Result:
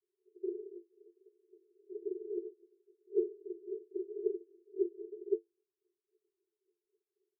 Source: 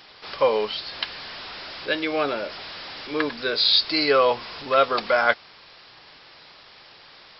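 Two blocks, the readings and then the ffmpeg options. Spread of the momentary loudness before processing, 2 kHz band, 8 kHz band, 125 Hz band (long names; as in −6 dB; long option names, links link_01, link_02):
17 LU, below −40 dB, can't be measured, below −40 dB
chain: -af "afftdn=noise_reduction=20:noise_floor=-32,aeval=exprs='0.708*(cos(1*acos(clip(val(0)/0.708,-1,1)))-cos(1*PI/2))+0.316*(cos(3*acos(clip(val(0)/0.708,-1,1)))-cos(3*PI/2))':channel_layout=same,aphaser=in_gain=1:out_gain=1:delay=4.6:decay=0.71:speed=0.32:type=sinusoidal,aresample=8000,acrusher=samples=37:mix=1:aa=0.000001:lfo=1:lforange=59.2:lforate=3.7,aresample=44100,tremolo=f=63:d=0.621,asuperpass=centerf=390:order=20:qfactor=3.9,volume=9.5dB"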